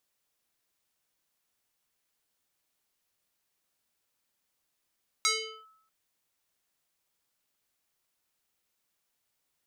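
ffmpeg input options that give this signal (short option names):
-f lavfi -i "aevalsrc='0.0944*pow(10,-3*t/0.72)*sin(2*PI*1300*t+3.9*clip(1-t/0.41,0,1)*sin(2*PI*1.34*1300*t))':d=0.64:s=44100"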